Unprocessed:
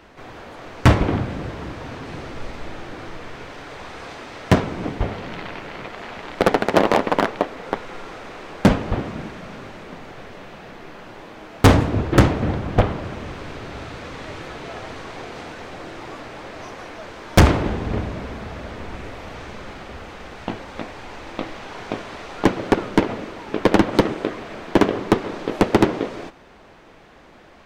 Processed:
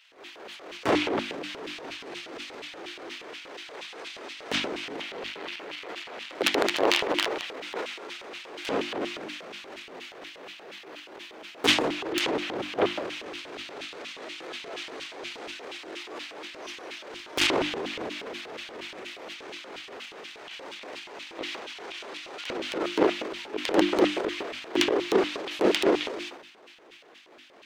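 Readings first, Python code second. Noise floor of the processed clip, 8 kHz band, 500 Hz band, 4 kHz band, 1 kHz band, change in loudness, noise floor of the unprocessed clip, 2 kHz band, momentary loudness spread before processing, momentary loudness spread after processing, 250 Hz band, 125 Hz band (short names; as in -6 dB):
-50 dBFS, -2.0 dB, -5.5 dB, +3.0 dB, -8.5 dB, -8.0 dB, -47 dBFS, -3.5 dB, 20 LU, 17 LU, -9.5 dB, -26.0 dB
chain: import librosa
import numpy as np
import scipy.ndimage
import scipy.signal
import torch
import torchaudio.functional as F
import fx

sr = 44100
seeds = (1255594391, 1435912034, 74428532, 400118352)

y = fx.filter_lfo_highpass(x, sr, shape='square', hz=4.2, low_hz=380.0, high_hz=2900.0, q=2.1)
y = fx.hum_notches(y, sr, base_hz=50, count=7)
y = fx.transient(y, sr, attack_db=-9, sustain_db=10)
y = y * 10.0 ** (-5.5 / 20.0)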